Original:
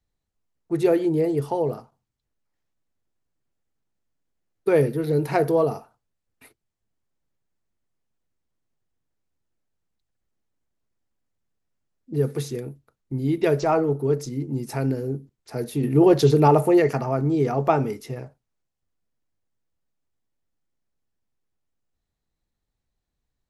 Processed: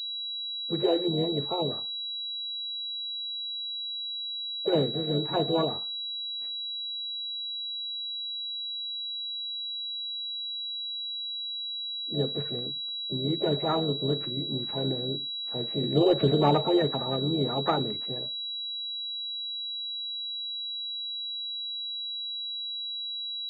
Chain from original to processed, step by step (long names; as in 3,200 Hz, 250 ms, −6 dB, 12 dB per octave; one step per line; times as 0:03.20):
spectral magnitudes quantised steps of 30 dB
pitch-shifted copies added +4 semitones −13 dB, +7 semitones −14 dB
switching amplifier with a slow clock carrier 3,900 Hz
level −6 dB